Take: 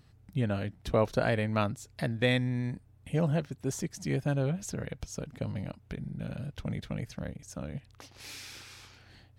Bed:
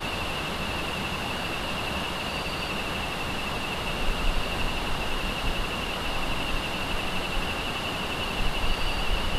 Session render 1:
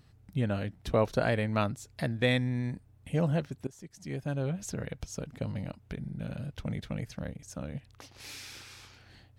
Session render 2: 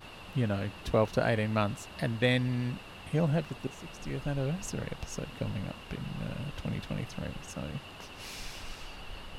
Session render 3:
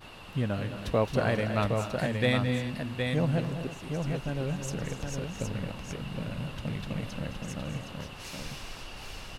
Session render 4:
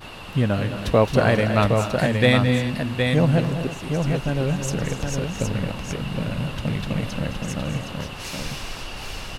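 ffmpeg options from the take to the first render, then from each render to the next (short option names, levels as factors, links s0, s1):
-filter_complex "[0:a]asplit=2[s0][s1];[s0]atrim=end=3.67,asetpts=PTS-STARTPTS,afade=t=out:st=3.666:d=0.004:c=hsin:silence=0.0794328[s2];[s1]atrim=start=3.67,asetpts=PTS-STARTPTS,afade=t=in:d=1.05:silence=0.0794328[s3];[s2][s3]concat=n=2:v=0:a=1"
-filter_complex "[1:a]volume=0.133[s0];[0:a][s0]amix=inputs=2:normalize=0"
-af "aecho=1:1:215|251|325|766:0.299|0.224|0.178|0.562"
-af "volume=2.82"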